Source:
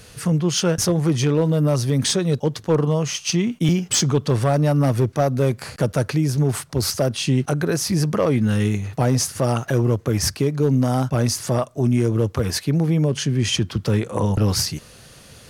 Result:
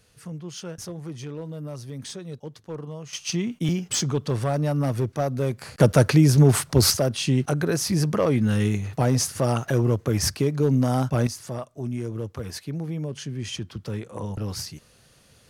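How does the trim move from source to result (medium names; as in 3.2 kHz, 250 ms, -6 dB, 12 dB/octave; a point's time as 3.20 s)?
-16.5 dB
from 3.13 s -6 dB
from 5.80 s +4 dB
from 6.97 s -2.5 dB
from 11.27 s -11.5 dB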